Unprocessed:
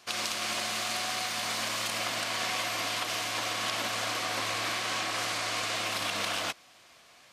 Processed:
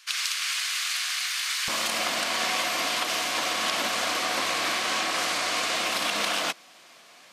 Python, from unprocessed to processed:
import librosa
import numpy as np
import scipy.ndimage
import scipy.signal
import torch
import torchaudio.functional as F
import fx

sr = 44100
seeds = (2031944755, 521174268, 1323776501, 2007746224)

y = fx.highpass(x, sr, hz=fx.steps((0.0, 1400.0), (1.68, 160.0)), slope=24)
y = y * librosa.db_to_amplitude(5.0)